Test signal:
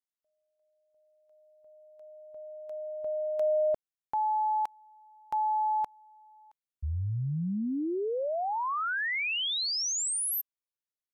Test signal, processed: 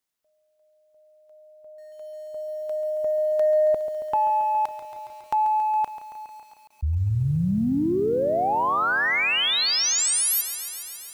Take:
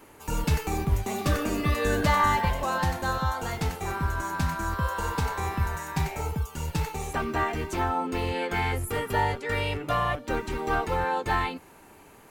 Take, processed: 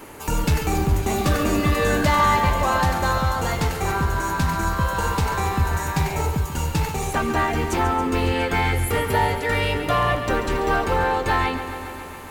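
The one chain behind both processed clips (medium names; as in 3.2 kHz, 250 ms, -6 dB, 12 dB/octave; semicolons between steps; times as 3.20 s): in parallel at +1 dB: compression 5:1, threshold -37 dBFS; on the sum: saturation -15.5 dBFS; bit-crushed delay 138 ms, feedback 80%, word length 9-bit, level -11.5 dB; trim +4.5 dB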